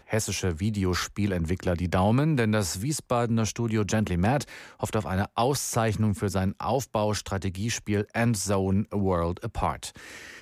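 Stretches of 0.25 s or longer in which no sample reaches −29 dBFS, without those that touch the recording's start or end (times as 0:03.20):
0:04.43–0:04.83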